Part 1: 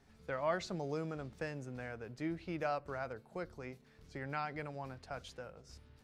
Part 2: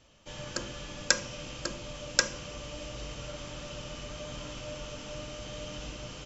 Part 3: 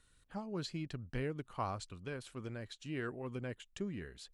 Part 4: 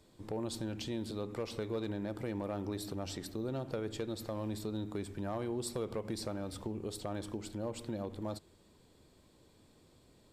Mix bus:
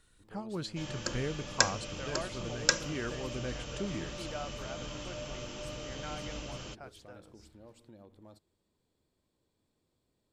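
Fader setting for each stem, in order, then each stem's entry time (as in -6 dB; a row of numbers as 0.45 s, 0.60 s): -5.0 dB, -1.0 dB, +2.5 dB, -15.5 dB; 1.70 s, 0.50 s, 0.00 s, 0.00 s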